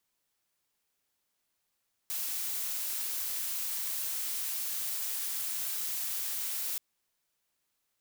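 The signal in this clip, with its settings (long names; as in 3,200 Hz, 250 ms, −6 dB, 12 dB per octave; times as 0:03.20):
noise blue, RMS −34.5 dBFS 4.68 s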